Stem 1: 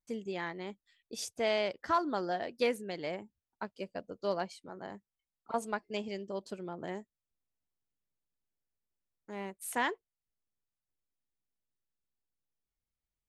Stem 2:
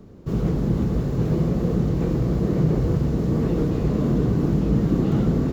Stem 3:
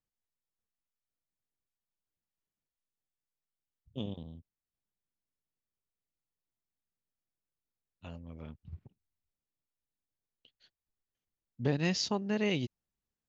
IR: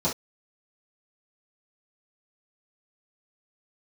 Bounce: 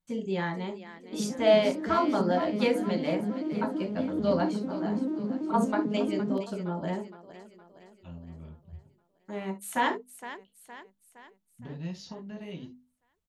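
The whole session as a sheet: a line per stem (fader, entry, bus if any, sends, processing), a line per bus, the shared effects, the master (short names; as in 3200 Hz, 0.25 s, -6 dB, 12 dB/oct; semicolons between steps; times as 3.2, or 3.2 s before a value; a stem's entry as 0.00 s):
+2.5 dB, 0.00 s, send -11.5 dB, echo send -11.5 dB, dry
-8.5 dB, 0.85 s, no send, no echo send, arpeggiated vocoder major triad, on G#3, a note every 0.111 s
-8.5 dB, 0.00 s, send -10.5 dB, no echo send, compressor 6:1, threshold -34 dBFS, peak gain reduction 10 dB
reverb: on, pre-delay 3 ms
echo: feedback echo 0.465 s, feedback 51%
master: notches 50/100/150/200/250 Hz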